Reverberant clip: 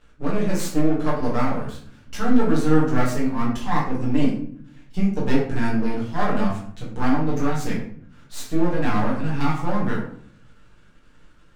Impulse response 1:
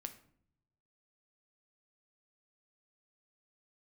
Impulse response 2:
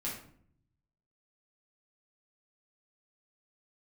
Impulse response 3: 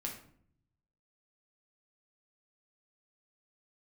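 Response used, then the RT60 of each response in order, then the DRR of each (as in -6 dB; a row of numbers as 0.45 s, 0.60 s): 2; 0.65 s, 0.60 s, 0.60 s; 7.5 dB, -6.5 dB, -0.5 dB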